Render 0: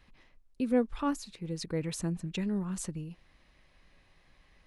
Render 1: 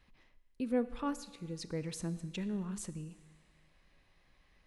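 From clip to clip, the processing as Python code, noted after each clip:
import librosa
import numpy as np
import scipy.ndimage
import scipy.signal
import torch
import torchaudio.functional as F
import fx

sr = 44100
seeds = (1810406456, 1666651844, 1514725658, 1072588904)

y = fx.rev_schroeder(x, sr, rt60_s=1.6, comb_ms=26, drr_db=14.0)
y = F.gain(torch.from_numpy(y), -5.0).numpy()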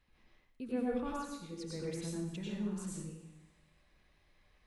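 y = fx.rev_plate(x, sr, seeds[0], rt60_s=0.7, hf_ratio=0.9, predelay_ms=80, drr_db=-5.0)
y = F.gain(torch.from_numpy(y), -7.0).numpy()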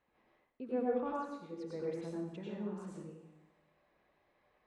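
y = fx.bandpass_q(x, sr, hz=640.0, q=0.89)
y = F.gain(torch.from_numpy(y), 4.5).numpy()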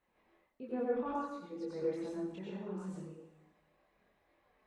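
y = fx.chorus_voices(x, sr, voices=6, hz=0.45, base_ms=24, depth_ms=3.2, mix_pct=50)
y = F.gain(torch.from_numpy(y), 3.5).numpy()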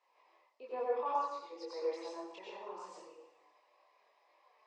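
y = fx.cabinet(x, sr, low_hz=480.0, low_slope=24, high_hz=7500.0, hz=(1000.0, 1500.0, 2500.0, 5000.0), db=(10, -9, 3, 10))
y = F.gain(torch.from_numpy(y), 2.5).numpy()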